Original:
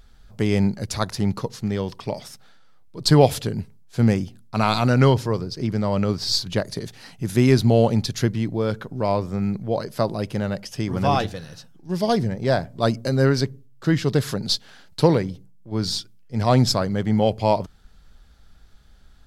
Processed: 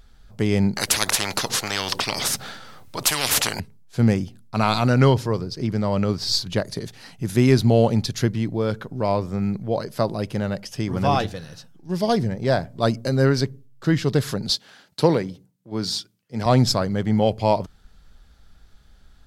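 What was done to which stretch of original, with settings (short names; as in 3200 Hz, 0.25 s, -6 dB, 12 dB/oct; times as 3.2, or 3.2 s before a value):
0.76–3.6 spectral compressor 10:1
14.5–16.46 Bessel high-pass 160 Hz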